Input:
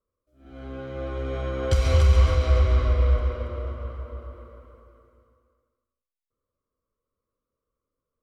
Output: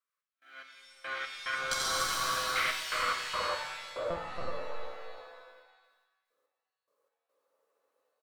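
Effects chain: high-pass sweep 1700 Hz -> 550 Hz, 2.8–3.98; added harmonics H 8 -27 dB, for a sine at -15 dBFS; AGC gain up to 5 dB; on a send: echo 86 ms -4 dB; on the sum: step gate "x.x..x.xxxxxx." 72 bpm -24 dB; 1.55–2.56 Butterworth band-stop 2300 Hz, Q 0.9; 4.1–4.51 monotone LPC vocoder at 8 kHz 170 Hz; shimmer reverb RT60 1 s, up +7 st, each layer -2 dB, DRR 5.5 dB; gain -2 dB

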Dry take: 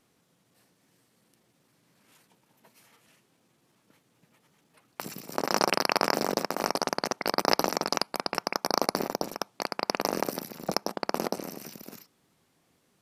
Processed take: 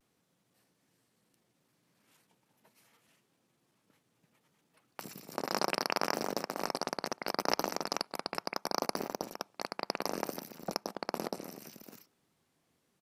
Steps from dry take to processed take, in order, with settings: speakerphone echo 0.19 s, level -24 dB; vibrato 0.69 Hz 44 cents; gain -7 dB

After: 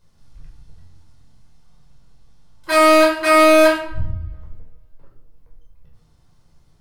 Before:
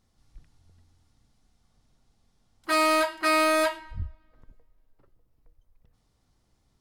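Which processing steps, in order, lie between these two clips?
shoebox room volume 830 m³, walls furnished, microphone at 5.1 m; gain +2.5 dB

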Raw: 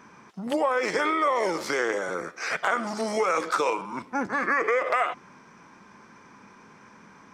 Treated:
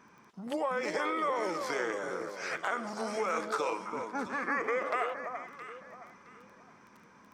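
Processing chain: echo with dull and thin repeats by turns 0.334 s, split 1200 Hz, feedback 53%, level -5.5 dB; crackle 10/s -38 dBFS; gain -8 dB

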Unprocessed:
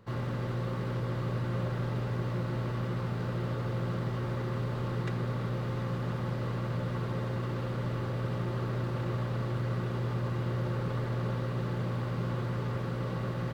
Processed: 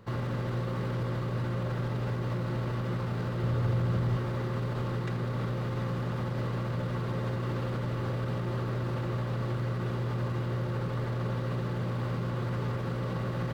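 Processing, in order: limiter -28.5 dBFS, peak gain reduction 7.5 dB; 3.43–4.17 bell 75 Hz +13.5 dB 1 oct; gain +4 dB

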